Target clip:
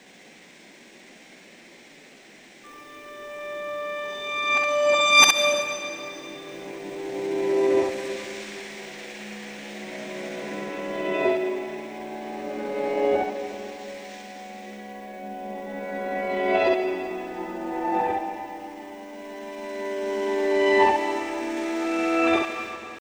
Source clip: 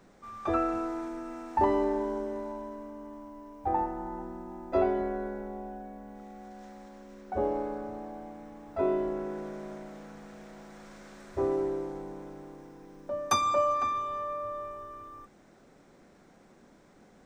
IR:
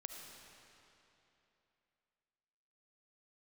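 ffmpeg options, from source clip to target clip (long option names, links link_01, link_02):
-filter_complex "[0:a]areverse,acrossover=split=170 2300:gain=0.141 1 0.1[link_01][link_02][link_03];[link_01][link_02][link_03]amix=inputs=3:normalize=0,atempo=0.75,aexciter=amount=10.8:drive=8.7:freq=2100,asplit=2[link_04][link_05];[1:a]atrim=start_sample=2205,adelay=63[link_06];[link_05][link_06]afir=irnorm=-1:irlink=0,volume=2.5dB[link_07];[link_04][link_07]amix=inputs=2:normalize=0,volume=5dB"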